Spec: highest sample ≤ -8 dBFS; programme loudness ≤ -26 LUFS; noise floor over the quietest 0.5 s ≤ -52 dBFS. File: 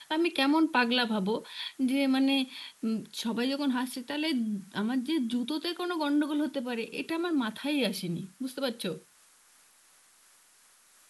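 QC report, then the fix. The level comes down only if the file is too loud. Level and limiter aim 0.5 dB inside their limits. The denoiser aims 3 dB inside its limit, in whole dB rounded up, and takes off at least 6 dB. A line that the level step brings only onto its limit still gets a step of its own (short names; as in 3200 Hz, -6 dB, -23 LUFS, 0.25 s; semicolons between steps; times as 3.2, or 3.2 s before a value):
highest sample -13.0 dBFS: OK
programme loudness -30.0 LUFS: OK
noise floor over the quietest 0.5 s -61 dBFS: OK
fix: none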